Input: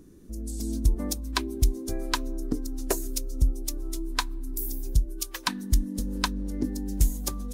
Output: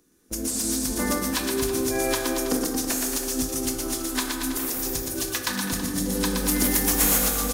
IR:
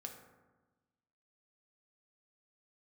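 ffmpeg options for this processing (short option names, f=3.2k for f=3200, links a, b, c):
-filter_complex "[0:a]agate=range=-27dB:threshold=-35dB:ratio=16:detection=peak,crystalizer=i=9.5:c=0,asplit=2[a][b];[b]acontrast=71,volume=1dB[c];[a][c]amix=inputs=2:normalize=0,alimiter=limit=-6.5dB:level=0:latency=1:release=213,acrossover=split=120|7900[d][e][f];[d]acompressor=threshold=-35dB:ratio=4[g];[e]acompressor=threshold=-25dB:ratio=4[h];[f]acompressor=threshold=-23dB:ratio=4[i];[g][h][i]amix=inputs=3:normalize=0,asettb=1/sr,asplit=3[j][k][l];[j]atrim=end=6.374[m];[k]atrim=start=6.37:end=7.18,asetpts=PTS-STARTPTS,afade=t=in:d=0.004:c=qsin,afade=t=out:st=0.806:d=0.004:c=qsin,aemphasis=mode=production:type=75kf[n];[l]atrim=start=7.176[o];[m][n]acrossfade=d=0.004:c1=hsin:c2=qsin[p];[p][o]acrossfade=d=0.004:c1=qsin:c2=hsin,asplit=2[q][r];[r]highpass=f=720:p=1,volume=12dB,asoftclip=type=tanh:threshold=-6.5dB[s];[q][s]amix=inputs=2:normalize=0,lowpass=f=1.6k:p=1,volume=-6dB,aecho=1:1:120|228|325.2|412.7|491.4:0.631|0.398|0.251|0.158|0.1[t];[1:a]atrim=start_sample=2205[u];[t][u]afir=irnorm=-1:irlink=0,volume=6.5dB"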